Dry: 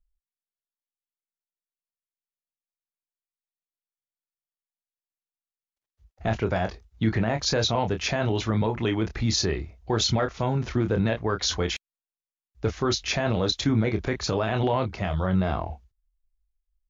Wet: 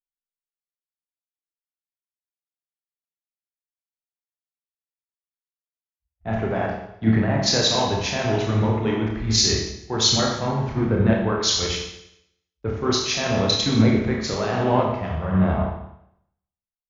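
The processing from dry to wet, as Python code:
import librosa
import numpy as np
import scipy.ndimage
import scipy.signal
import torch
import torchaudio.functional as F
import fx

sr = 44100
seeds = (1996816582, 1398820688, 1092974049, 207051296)

y = fx.rev_schroeder(x, sr, rt60_s=1.4, comb_ms=28, drr_db=-1.5)
y = fx.band_widen(y, sr, depth_pct=100)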